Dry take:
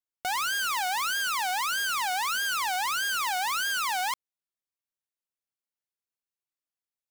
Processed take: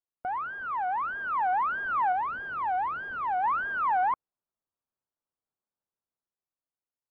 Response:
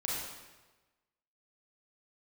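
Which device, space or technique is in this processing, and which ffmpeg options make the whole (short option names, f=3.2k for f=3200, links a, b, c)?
action camera in a waterproof case: -filter_complex "[0:a]asettb=1/sr,asplit=3[a][b][c];[a]atrim=end=2.124[d];[b]atrim=start=2.12:end=3.44,asetpts=PTS-STARTPTS,afade=t=in:d=0.004:c=qsin,afade=t=out:st=1.316:d=0.004:c=qsin,equalizer=f=1.3k:w=0.87:g=-5.5[e];[c]atrim=start=3.436[f];[d][e]acrossfade=d=0.004:c1=hsin:c2=qsin[g];[g][f]acrossfade=d=0.004:c1=qsin:c2=hsin,lowpass=f=1.3k:w=0.5412,lowpass=f=1.3k:w=1.3066,dynaudnorm=f=220:g=11:m=6dB" -ar 16000 -c:a aac -b:a 48k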